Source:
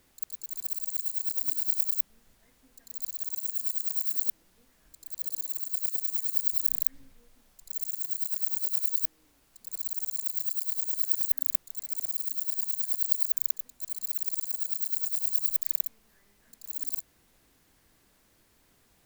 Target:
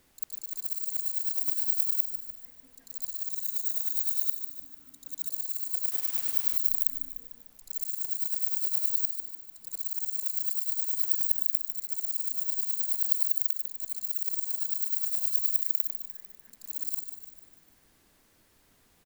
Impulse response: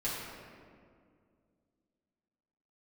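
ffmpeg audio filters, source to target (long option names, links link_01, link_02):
-filter_complex "[0:a]bandreject=frequency=50:width_type=h:width=6,bandreject=frequency=100:width_type=h:width=6,asettb=1/sr,asplit=3[link_01][link_02][link_03];[link_01]atrim=end=3.304[link_04];[link_02]atrim=start=3.3:end=5.28,asetpts=PTS-STARTPTS,afade=type=in:duration=0.004:curve=qsin,afade=type=out:start_time=1.976:duration=0.004:curve=qsin,afreqshift=-290[link_05];[link_03]atrim=start=5.276[link_06];[link_04][link_05]acrossfade=duration=0.004:curve1=hsin:curve2=qsin[link_07];[link_07][link_06]acrossfade=duration=0.004:curve1=qsin:curve2=hsin,asplit=2[link_08][link_09];[link_09]aecho=0:1:149|298|447|596|745|894:0.398|0.203|0.104|0.0528|0.0269|0.0137[link_10];[link_08][link_10]amix=inputs=2:normalize=0,asettb=1/sr,asplit=3[link_11][link_12][link_13];[link_11]atrim=end=5.914[link_14];[link_12]atrim=start=5.91:end=6.57,asetpts=PTS-STARTPTS,afade=type=in:duration=0.004:curve=qsin,afade=type=out:start_time=0.656:duration=0.004:curve=qsin,aeval=exprs='val(0)*gte(abs(val(0)),0.0224)':channel_layout=same[link_15];[link_13]atrim=start=6.566[link_16];[link_14][link_15]acrossfade=duration=0.004:curve1=hsin:curve2=qsin[link_17];[link_17][link_16]acrossfade=duration=0.004:curve1=qsin:curve2=hsin"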